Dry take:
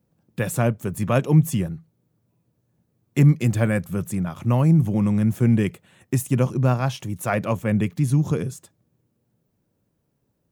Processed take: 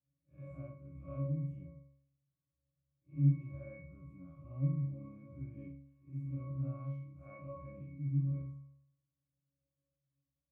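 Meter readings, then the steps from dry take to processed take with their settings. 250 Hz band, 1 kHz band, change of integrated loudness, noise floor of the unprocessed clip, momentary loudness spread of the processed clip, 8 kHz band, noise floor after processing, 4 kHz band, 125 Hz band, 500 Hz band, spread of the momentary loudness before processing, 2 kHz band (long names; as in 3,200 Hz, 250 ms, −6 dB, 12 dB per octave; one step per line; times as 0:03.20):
−21.0 dB, −28.0 dB, −17.0 dB, −72 dBFS, 19 LU, below −40 dB, below −85 dBFS, below −40 dB, −16.0 dB, −25.0 dB, 10 LU, below −30 dB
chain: spectrum smeared in time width 127 ms
resonances in every octave C#, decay 0.71 s
level −1.5 dB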